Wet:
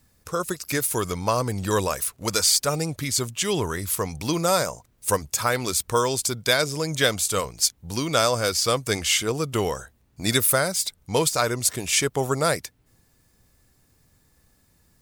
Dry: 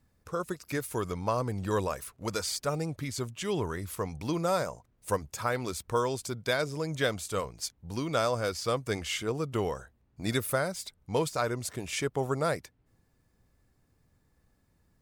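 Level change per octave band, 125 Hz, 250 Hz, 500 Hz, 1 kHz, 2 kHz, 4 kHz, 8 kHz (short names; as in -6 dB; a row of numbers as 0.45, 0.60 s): +5.5, +5.5, +6.0, +7.0, +8.5, +13.0, +15.5 dB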